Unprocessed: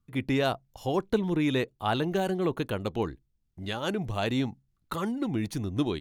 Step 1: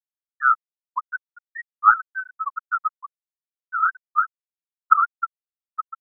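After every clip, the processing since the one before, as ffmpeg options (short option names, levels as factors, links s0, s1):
-af "adynamicsmooth=sensitivity=3.5:basefreq=5600,highpass=f=1300:t=q:w=9.7,afftfilt=real='re*gte(hypot(re,im),0.251)':imag='im*gte(hypot(re,im),0.251)':win_size=1024:overlap=0.75,volume=1.88"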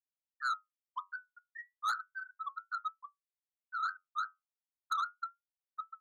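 -af "flanger=delay=8.7:depth=2.8:regen=-65:speed=0.34:shape=triangular,asoftclip=type=tanh:threshold=0.0891,volume=0.422"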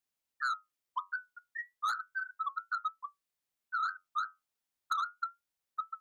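-af "acompressor=threshold=0.0126:ratio=6,volume=2.24"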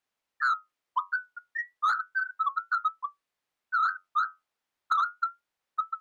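-filter_complex "[0:a]asplit=2[s0][s1];[s1]highpass=f=720:p=1,volume=2.24,asoftclip=type=tanh:threshold=0.0668[s2];[s0][s2]amix=inputs=2:normalize=0,lowpass=f=1600:p=1,volume=0.501,volume=2.51"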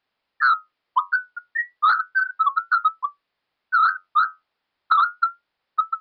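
-af "aresample=11025,aresample=44100,volume=2.66"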